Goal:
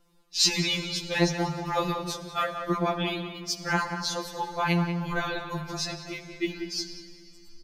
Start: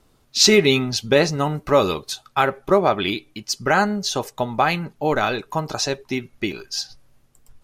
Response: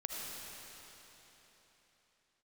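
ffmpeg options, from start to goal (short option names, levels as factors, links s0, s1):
-filter_complex "[0:a]asplit=2[s0][s1];[s1]adelay=186,lowpass=f=1700:p=1,volume=0.501,asplit=2[s2][s3];[s3]adelay=186,lowpass=f=1700:p=1,volume=0.41,asplit=2[s4][s5];[s5]adelay=186,lowpass=f=1700:p=1,volume=0.41,asplit=2[s6][s7];[s7]adelay=186,lowpass=f=1700:p=1,volume=0.41,asplit=2[s8][s9];[s9]adelay=186,lowpass=f=1700:p=1,volume=0.41[s10];[s0][s2][s4][s6][s8][s10]amix=inputs=6:normalize=0,asplit=2[s11][s12];[1:a]atrim=start_sample=2205,asetrate=61740,aresample=44100[s13];[s12][s13]afir=irnorm=-1:irlink=0,volume=0.473[s14];[s11][s14]amix=inputs=2:normalize=0,afftfilt=real='re*2.83*eq(mod(b,8),0)':imag='im*2.83*eq(mod(b,8),0)':win_size=2048:overlap=0.75,volume=0.473"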